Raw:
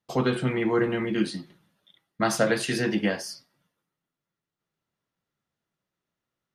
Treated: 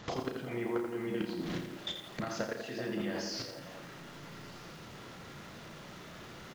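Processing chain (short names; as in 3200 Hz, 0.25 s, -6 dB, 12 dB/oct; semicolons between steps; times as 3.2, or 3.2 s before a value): zero-crossing step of -34.5 dBFS; level quantiser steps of 20 dB; sample leveller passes 1; compressor 8:1, threshold -49 dBFS, peak gain reduction 30 dB; air absorption 84 m; doubler 34 ms -7 dB; delay with a stepping band-pass 0.19 s, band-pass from 310 Hz, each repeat 0.7 oct, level -4.5 dB; downsampling 16000 Hz; lo-fi delay 84 ms, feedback 55%, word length 11-bit, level -6.5 dB; gain +13 dB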